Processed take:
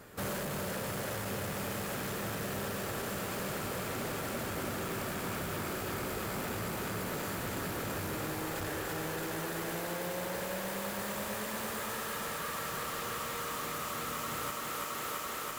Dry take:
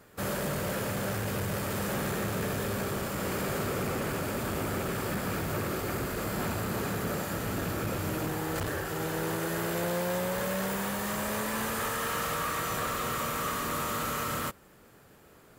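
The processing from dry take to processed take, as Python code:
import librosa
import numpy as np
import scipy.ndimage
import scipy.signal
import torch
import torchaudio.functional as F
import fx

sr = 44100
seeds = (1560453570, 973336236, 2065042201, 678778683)

y = 10.0 ** (-37.0 / 20.0) * np.tanh(x / 10.0 ** (-37.0 / 20.0))
y = fx.echo_thinned(y, sr, ms=334, feedback_pct=79, hz=200.0, wet_db=-4.0)
y = fx.rider(y, sr, range_db=10, speed_s=0.5)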